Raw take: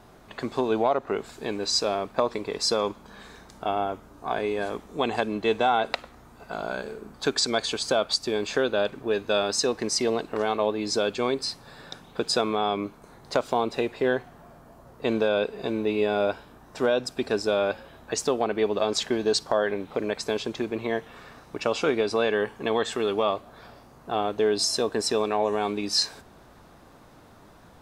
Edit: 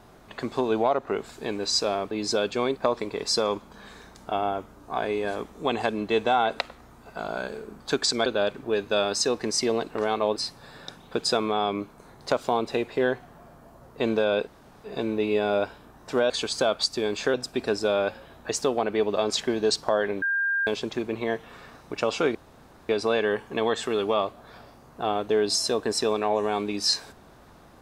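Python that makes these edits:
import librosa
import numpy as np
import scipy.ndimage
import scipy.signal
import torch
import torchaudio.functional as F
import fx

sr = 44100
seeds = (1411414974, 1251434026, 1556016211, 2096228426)

y = fx.edit(x, sr, fx.move(start_s=7.6, length_s=1.04, to_s=16.97),
    fx.move(start_s=10.74, length_s=0.66, to_s=2.11),
    fx.insert_room_tone(at_s=15.51, length_s=0.37),
    fx.bleep(start_s=19.85, length_s=0.45, hz=1600.0, db=-22.0),
    fx.insert_room_tone(at_s=21.98, length_s=0.54), tone=tone)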